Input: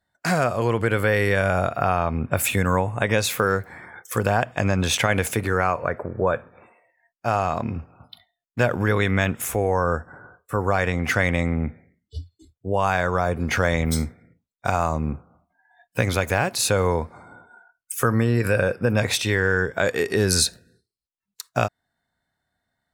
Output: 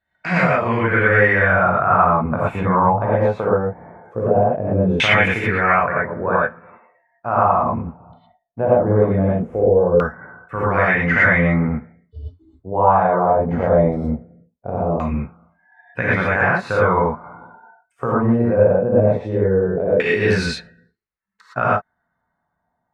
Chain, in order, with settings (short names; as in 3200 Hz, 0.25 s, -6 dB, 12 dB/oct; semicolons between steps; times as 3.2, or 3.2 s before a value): high shelf 10000 Hz +6.5 dB; non-linear reverb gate 0.14 s rising, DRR -7.5 dB; LFO low-pass saw down 0.2 Hz 450–2600 Hz; gain -4.5 dB